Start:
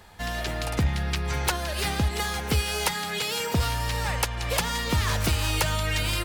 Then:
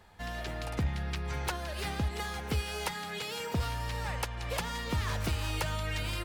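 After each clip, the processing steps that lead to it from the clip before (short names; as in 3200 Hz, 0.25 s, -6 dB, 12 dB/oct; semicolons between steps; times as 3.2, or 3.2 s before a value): high shelf 3700 Hz -6 dB; gain -7 dB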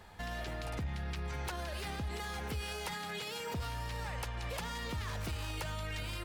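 limiter -35 dBFS, peak gain reduction 11.5 dB; gain +3.5 dB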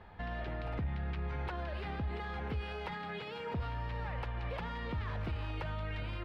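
air absorption 390 m; gain +2 dB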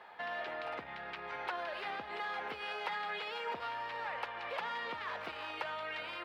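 HPF 620 Hz 12 dB/oct; gain +5 dB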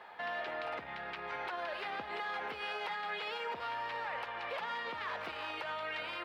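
limiter -32 dBFS, peak gain reduction 6.5 dB; gain +2 dB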